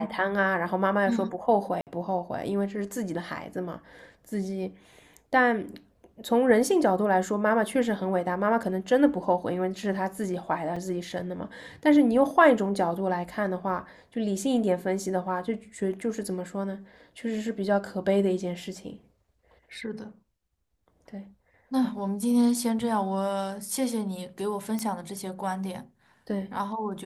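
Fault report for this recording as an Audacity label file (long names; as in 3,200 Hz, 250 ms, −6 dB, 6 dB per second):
1.810000	1.870000	drop-out 58 ms
10.760000	10.760000	drop-out 4.6 ms
24.790000	24.790000	click −17 dBFS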